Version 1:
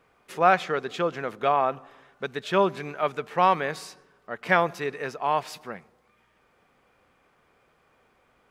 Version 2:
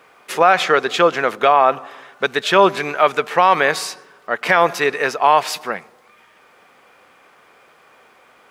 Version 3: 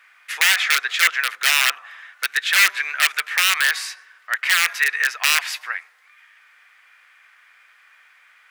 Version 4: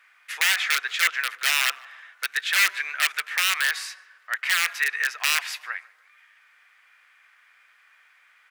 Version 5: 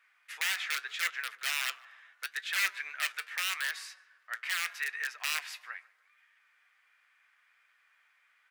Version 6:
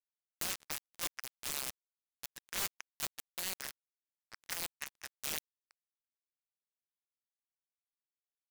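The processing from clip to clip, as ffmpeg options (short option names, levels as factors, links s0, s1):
-af "highpass=f=550:p=1,alimiter=level_in=6.68:limit=0.891:release=50:level=0:latency=1,volume=0.891"
-af "aeval=exprs='(mod(2*val(0)+1,2)-1)/2':c=same,highpass=f=1800:t=q:w=2.7,volume=0.596"
-filter_complex "[0:a]asplit=2[s0][s1];[s1]adelay=150,lowpass=f=2400:p=1,volume=0.075,asplit=2[s2][s3];[s3]adelay=150,lowpass=f=2400:p=1,volume=0.53,asplit=2[s4][s5];[s5]adelay=150,lowpass=f=2400:p=1,volume=0.53,asplit=2[s6][s7];[s7]adelay=150,lowpass=f=2400:p=1,volume=0.53[s8];[s0][s2][s4][s6][s8]amix=inputs=5:normalize=0,volume=0.562"
-af "flanger=delay=4.2:depth=4.9:regen=74:speed=0.79:shape=triangular,volume=0.501"
-af "acrusher=bits=3:mix=0:aa=0.5,aeval=exprs='(mod(12.6*val(0)+1,2)-1)/12.6':c=same"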